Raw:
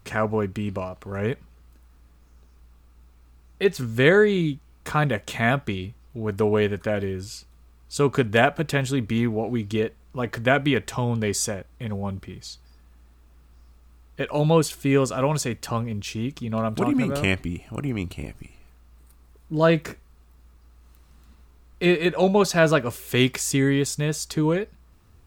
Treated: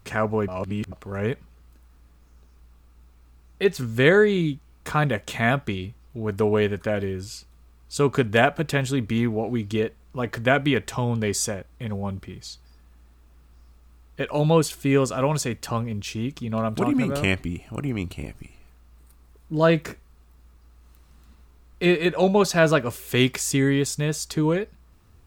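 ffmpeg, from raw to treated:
-filter_complex "[0:a]asplit=3[s0][s1][s2];[s0]atrim=end=0.482[s3];[s1]atrim=start=0.478:end=0.922,asetpts=PTS-STARTPTS,areverse[s4];[s2]atrim=start=0.918[s5];[s3][s4]acrossfade=d=0.004:c1=hsin:c2=hsin[s6];[s6][s5]acrossfade=d=0.004:c1=hsin:c2=hsin"

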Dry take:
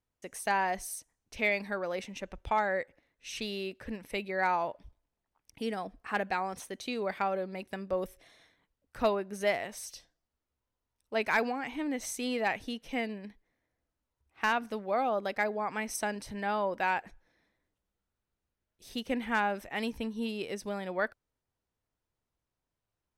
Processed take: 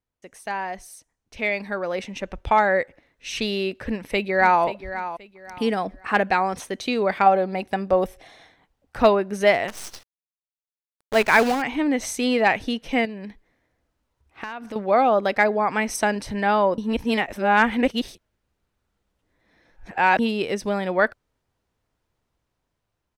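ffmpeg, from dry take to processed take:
-filter_complex "[0:a]asplit=2[s0][s1];[s1]afade=t=in:st=3.74:d=0.01,afade=t=out:st=4.63:d=0.01,aecho=0:1:530|1060|1590:0.237137|0.0711412|0.0213424[s2];[s0][s2]amix=inputs=2:normalize=0,asettb=1/sr,asplit=3[s3][s4][s5];[s3]atrim=end=7.264[s6];[s4]atrim=start=7.26:end=9.02,asetpts=PTS-STARTPTS,afade=t=in:d=0.004:c=qsin,afade=t=out:st=1.756:d=0.004:c=qsin,equalizer=f=780:w=5:g=9[s7];[s5]atrim=start=9.016[s8];[s6][s7]acrossfade=d=0.004:c1=hsin:c2=qsin[s9];[s9][s8]acrossfade=d=0.004:c1=qsin:c2=hsin,asettb=1/sr,asplit=3[s10][s11][s12];[s10]atrim=end=9.684[s13];[s11]atrim=start=9.68:end=11.62,asetpts=PTS-STARTPTS,afade=t=in:d=0.004:c=qsin,afade=t=out:st=1.936:d=0.004:c=qsin,acrusher=bits=7:dc=4:mix=0:aa=0.000001[s14];[s12]atrim=start=11.616[s15];[s13][s14]acrossfade=d=0.004:c1=hsin:c2=qsin[s16];[s16][s15]acrossfade=d=0.004:c1=qsin:c2=hsin,asettb=1/sr,asplit=3[s17][s18][s19];[s17]atrim=end=13.054[s20];[s18]atrim=start=13.05:end=14.76,asetpts=PTS-STARTPTS,afade=t=in:d=0.004:c=qsin,afade=t=out:st=1.706:d=0.004:c=qsin,acompressor=threshold=0.00794:ratio=6:attack=3.2:release=140:knee=1:detection=peak[s21];[s19]atrim=start=14.756[s22];[s20][s21]acrossfade=d=0.004:c1=hsin:c2=qsin[s23];[s23][s22]acrossfade=d=0.004:c1=qsin:c2=hsin,asplit=3[s24][s25][s26];[s24]atrim=end=16.782[s27];[s25]atrim=start=16.778:end=20.192,asetpts=PTS-STARTPTS,areverse[s28];[s26]atrim=start=20.188[s29];[s27][s28]acrossfade=d=0.004:c1=hsin:c2=hsin[s30];[s30][s29]acrossfade=d=0.004:c1=hsin:c2=hsin,highshelf=f=7700:g=-9.5,dynaudnorm=f=180:g=21:m=3.98"

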